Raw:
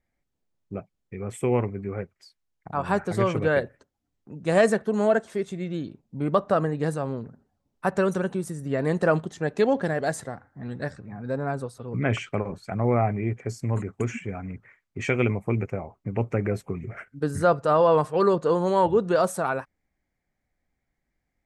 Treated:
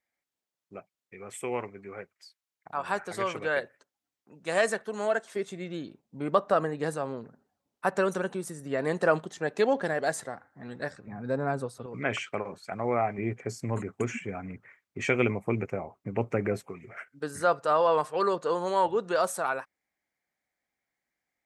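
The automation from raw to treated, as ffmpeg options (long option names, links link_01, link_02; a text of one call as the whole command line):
ffmpeg -i in.wav -af "asetnsamples=nb_out_samples=441:pad=0,asendcmd='5.36 highpass f 450;11.07 highpass f 150;11.86 highpass f 610;13.18 highpass f 230;16.66 highpass f 830',highpass=frequency=1100:poles=1" out.wav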